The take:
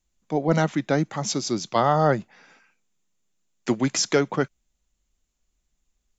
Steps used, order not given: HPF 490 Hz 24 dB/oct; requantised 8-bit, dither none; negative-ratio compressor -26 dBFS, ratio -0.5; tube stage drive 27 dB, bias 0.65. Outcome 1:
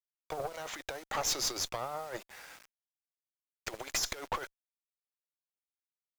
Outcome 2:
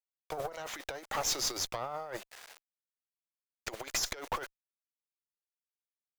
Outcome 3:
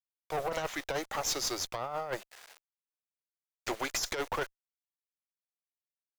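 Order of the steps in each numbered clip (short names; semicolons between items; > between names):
negative-ratio compressor > HPF > requantised > tube stage; requantised > negative-ratio compressor > HPF > tube stage; requantised > HPF > negative-ratio compressor > tube stage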